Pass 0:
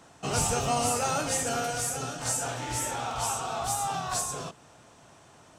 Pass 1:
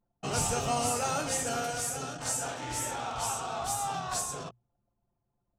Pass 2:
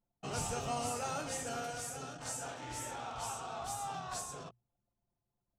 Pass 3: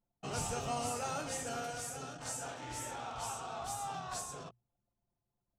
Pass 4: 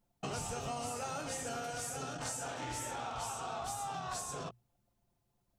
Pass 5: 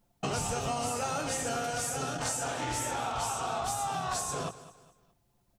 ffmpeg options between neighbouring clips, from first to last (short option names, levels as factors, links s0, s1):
-af "anlmdn=0.631,bandreject=f=60:t=h:w=6,bandreject=f=120:t=h:w=6,volume=0.75"
-af "highshelf=f=6800:g=-4.5,volume=0.447"
-af anull
-af "acompressor=threshold=0.00562:ratio=6,volume=2.51"
-af "aecho=1:1:208|416|624:0.158|0.0571|0.0205,volume=2.24"